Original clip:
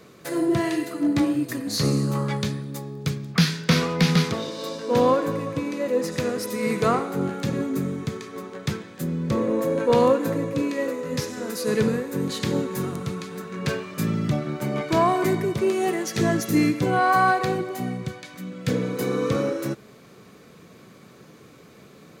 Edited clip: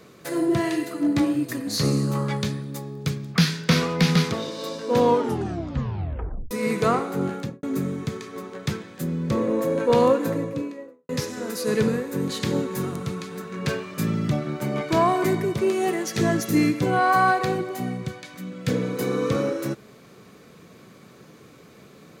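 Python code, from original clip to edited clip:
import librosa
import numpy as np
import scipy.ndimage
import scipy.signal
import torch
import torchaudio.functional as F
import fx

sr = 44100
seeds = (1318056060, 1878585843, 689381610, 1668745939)

y = fx.studio_fade_out(x, sr, start_s=7.33, length_s=0.3)
y = fx.studio_fade_out(y, sr, start_s=10.24, length_s=0.85)
y = fx.edit(y, sr, fx.tape_stop(start_s=5.0, length_s=1.51), tone=tone)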